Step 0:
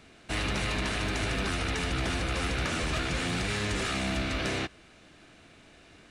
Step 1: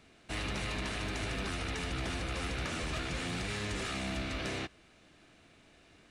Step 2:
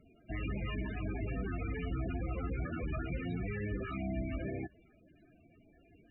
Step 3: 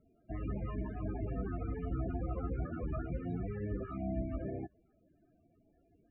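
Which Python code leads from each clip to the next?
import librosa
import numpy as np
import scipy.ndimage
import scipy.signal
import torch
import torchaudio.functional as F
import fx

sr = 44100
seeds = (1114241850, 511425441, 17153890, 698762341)

y1 = fx.peak_eq(x, sr, hz=1500.0, db=-2.0, octaves=0.21)
y1 = y1 * librosa.db_to_amplitude(-6.0)
y2 = fx.spec_topn(y1, sr, count=16)
y2 = y2 * librosa.db_to_amplitude(2.0)
y3 = fx.high_shelf_res(y2, sr, hz=1600.0, db=-13.5, q=1.5)
y3 = fx.upward_expand(y3, sr, threshold_db=-48.0, expansion=1.5)
y3 = y3 * librosa.db_to_amplitude(1.0)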